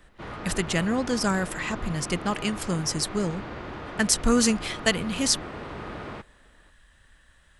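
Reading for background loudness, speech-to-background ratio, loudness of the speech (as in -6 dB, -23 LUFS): -37.5 LUFS, 11.5 dB, -26.0 LUFS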